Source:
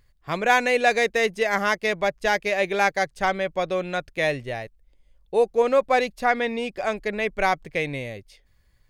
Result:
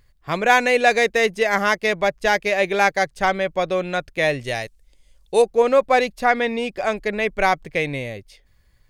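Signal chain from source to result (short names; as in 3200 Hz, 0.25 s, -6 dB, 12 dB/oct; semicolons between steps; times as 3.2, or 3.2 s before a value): 4.41–5.42 bell 7500 Hz +13.5 dB 2.4 oct; gain +3.5 dB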